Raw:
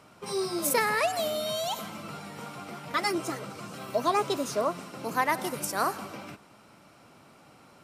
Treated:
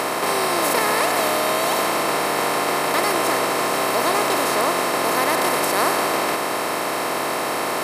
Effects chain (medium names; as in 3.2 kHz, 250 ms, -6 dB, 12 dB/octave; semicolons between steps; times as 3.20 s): spectral levelling over time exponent 0.2; trim -1.5 dB